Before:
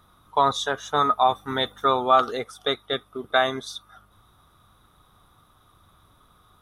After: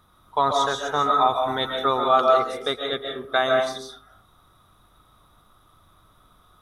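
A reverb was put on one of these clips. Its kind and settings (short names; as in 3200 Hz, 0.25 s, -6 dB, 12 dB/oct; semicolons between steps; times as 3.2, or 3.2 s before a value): digital reverb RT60 0.54 s, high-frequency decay 0.5×, pre-delay 0.1 s, DRR 1.5 dB; gain -1.5 dB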